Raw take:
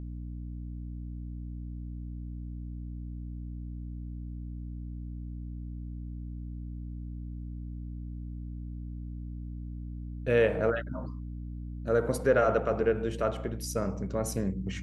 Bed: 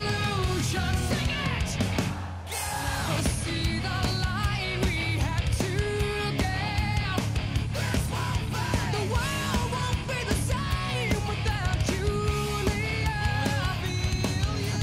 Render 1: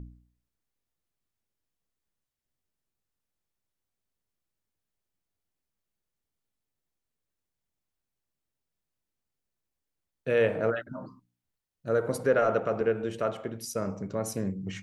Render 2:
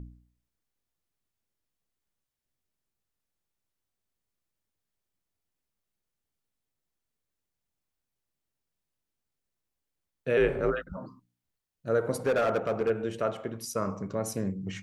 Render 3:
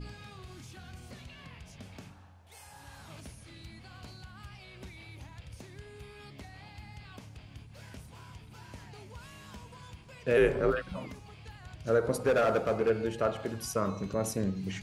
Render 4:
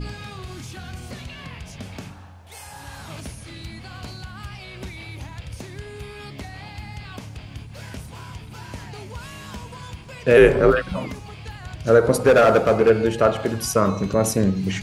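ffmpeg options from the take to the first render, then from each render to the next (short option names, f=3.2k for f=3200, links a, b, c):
-af "bandreject=f=60:t=h:w=4,bandreject=f=120:t=h:w=4,bandreject=f=180:t=h:w=4,bandreject=f=240:t=h:w=4,bandreject=f=300:t=h:w=4"
-filter_complex "[0:a]asettb=1/sr,asplit=3[a][b][c];[a]atrim=end=10.374[d];[b]atrim=start=10.37:end=10.97,asetpts=PTS-STARTPTS,afade=t=in:d=0.004:c=qsin,afade=t=out:st=0.596:d=0.004:c=qsin,afreqshift=-69[e];[c]atrim=start=10.966[f];[d][e]acrossfade=d=0.004:c1=hsin:c2=qsin[g];[g][f]acrossfade=d=0.004:c1=qsin:c2=hsin,asettb=1/sr,asplit=3[h][i][j];[h]atrim=end=12.194[k];[i]atrim=start=12.19:end=12.9,asetpts=PTS-STARTPTS,afade=t=in:d=0.004:c=qsin,afade=t=out:st=0.706:d=0.004:c=qsin,asoftclip=type=hard:threshold=-21.5dB[l];[j]atrim=start=12.896[m];[k][l]acrossfade=d=0.004:c1=hsin:c2=qsin[n];[n][m]acrossfade=d=0.004:c1=qsin:c2=hsin,asettb=1/sr,asplit=3[o][p][q];[o]atrim=end=13.534[r];[p]atrim=start=13.53:end=14.13,asetpts=PTS-STARTPTS,afade=t=in:d=0.004:c=qsin,afade=t=out:st=0.596:d=0.004:c=qsin,equalizer=f=1.1k:w=4.8:g=13[s];[q]atrim=start=14.126[t];[r][s]acrossfade=d=0.004:c1=hsin:c2=qsin[u];[u][t]acrossfade=d=0.004:c1=qsin:c2=hsin"
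-filter_complex "[1:a]volume=-21dB[a];[0:a][a]amix=inputs=2:normalize=0"
-af "volume=12dB"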